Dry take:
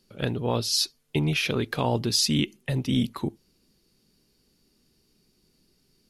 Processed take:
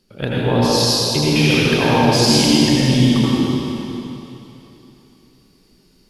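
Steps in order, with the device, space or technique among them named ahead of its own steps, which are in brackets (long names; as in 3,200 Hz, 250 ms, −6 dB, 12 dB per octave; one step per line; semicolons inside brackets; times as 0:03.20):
swimming-pool hall (convolution reverb RT60 3.1 s, pre-delay 76 ms, DRR −7.5 dB; high-shelf EQ 4,900 Hz −5.5 dB)
level +4.5 dB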